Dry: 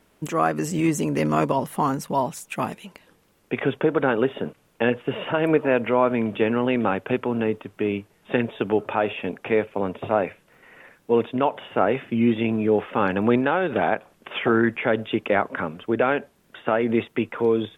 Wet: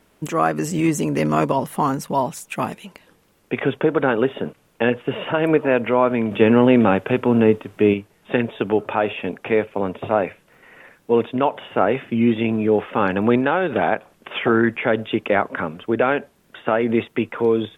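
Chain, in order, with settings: 6.31–7.94 s: harmonic-percussive split harmonic +7 dB; trim +2.5 dB

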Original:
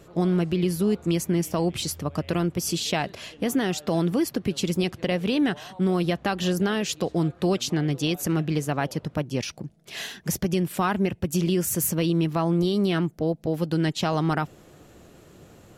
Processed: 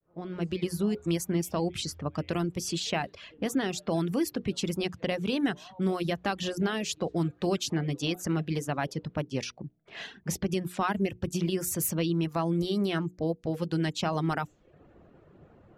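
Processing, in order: fade-in on the opening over 0.56 s; hum notches 60/120/180/240/300/360/420/480 Hz; level-controlled noise filter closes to 1.4 kHz, open at -21.5 dBFS; reverb removal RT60 0.57 s; trim -3.5 dB

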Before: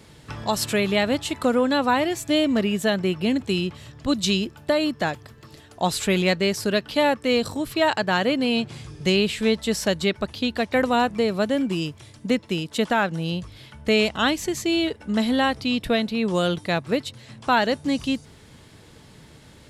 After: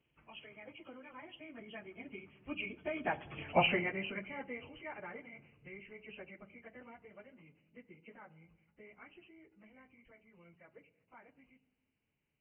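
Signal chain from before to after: knee-point frequency compression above 2 kHz 4:1; Doppler pass-by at 5.47 s, 10 m/s, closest 1.5 m; harmonic-percussive split percussive +8 dB; plain phase-vocoder stretch 0.63×; on a send: reverberation RT60 1.2 s, pre-delay 3 ms, DRR 16 dB; on the sum: trim -1 dB

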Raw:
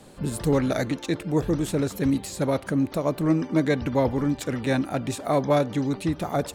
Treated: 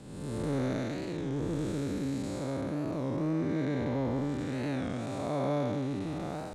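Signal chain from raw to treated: spectral blur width 358 ms; low-pass 9.4 kHz 12 dB/octave; warped record 33 1/3 rpm, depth 160 cents; trim -4.5 dB

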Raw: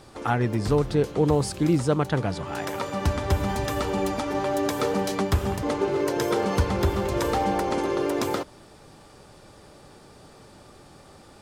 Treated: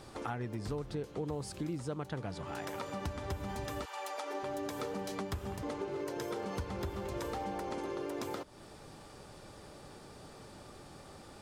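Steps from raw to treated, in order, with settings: 3.84–4.42 s: high-pass 1 kHz -> 290 Hz 24 dB/octave; compression 3:1, threshold -37 dBFS, peak gain reduction 15 dB; trim -2.5 dB

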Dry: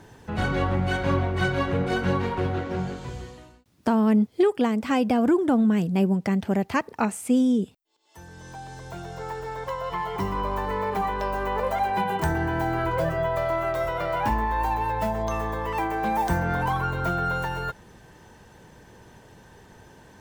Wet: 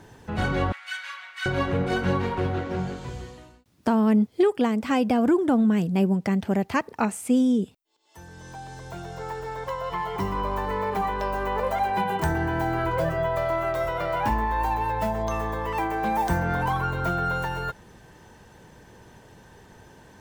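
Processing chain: 0.72–1.46 s: high-pass 1.5 kHz 24 dB/octave

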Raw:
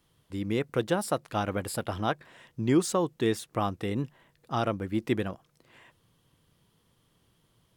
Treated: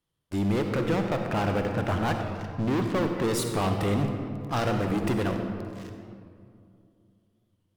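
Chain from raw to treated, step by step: 0.74–3.24 s: low-pass 2.7 kHz 24 dB/octave; transient shaper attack -7 dB, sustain -3 dB; waveshaping leveller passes 5; compression, threshold -21 dBFS, peak gain reduction 5 dB; reverberation RT60 2.4 s, pre-delay 47 ms, DRR 4 dB; warped record 45 rpm, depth 100 cents; trim -4 dB

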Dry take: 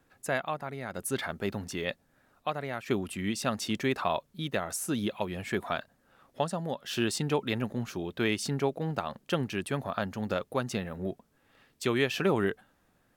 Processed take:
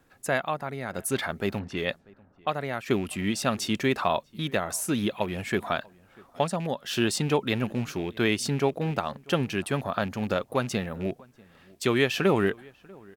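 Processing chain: rattle on loud lows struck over -34 dBFS, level -37 dBFS; 1.59–2.48 s: level-controlled noise filter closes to 580 Hz, open at -31 dBFS; echo from a far wall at 110 m, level -25 dB; trim +4 dB

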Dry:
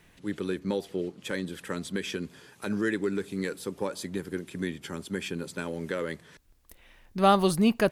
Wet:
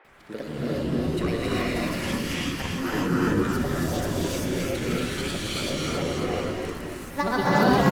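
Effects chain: in parallel at +1.5 dB: compression, threshold -33 dBFS, peak gain reduction 16.5 dB; on the sum: granulator, pitch spread up and down by 7 st; band noise 320–2100 Hz -51 dBFS; on a send: frequency-shifting echo 270 ms, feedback 59%, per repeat -66 Hz, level -3.5 dB; on the sum: gated-style reverb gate 420 ms rising, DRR -6.5 dB; trim -5.5 dB

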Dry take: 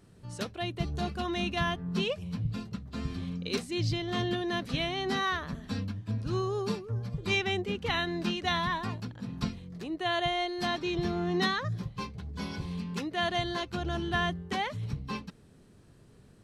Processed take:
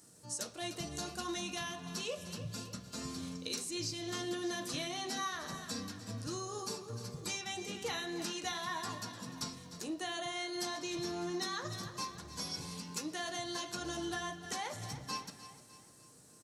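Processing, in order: high-pass 360 Hz 6 dB/octave; resonant high shelf 4.5 kHz +14 dB, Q 1.5; feedback delay 300 ms, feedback 48%, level -16.5 dB; compression, threshold -34 dBFS, peak gain reduction 10.5 dB; reverberation, pre-delay 3 ms, DRR 3 dB; trim -2.5 dB

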